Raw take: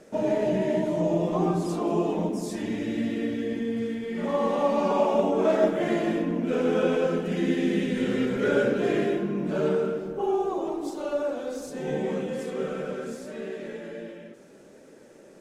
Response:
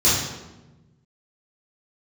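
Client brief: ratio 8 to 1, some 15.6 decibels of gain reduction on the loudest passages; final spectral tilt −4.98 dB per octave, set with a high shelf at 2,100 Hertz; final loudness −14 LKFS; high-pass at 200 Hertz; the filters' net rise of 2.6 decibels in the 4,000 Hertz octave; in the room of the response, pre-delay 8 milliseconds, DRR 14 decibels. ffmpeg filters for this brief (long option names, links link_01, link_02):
-filter_complex "[0:a]highpass=200,highshelf=frequency=2100:gain=-4.5,equalizer=frequency=4000:width_type=o:gain=8,acompressor=threshold=-34dB:ratio=8,asplit=2[link_01][link_02];[1:a]atrim=start_sample=2205,adelay=8[link_03];[link_02][link_03]afir=irnorm=-1:irlink=0,volume=-32.5dB[link_04];[link_01][link_04]amix=inputs=2:normalize=0,volume=23.5dB"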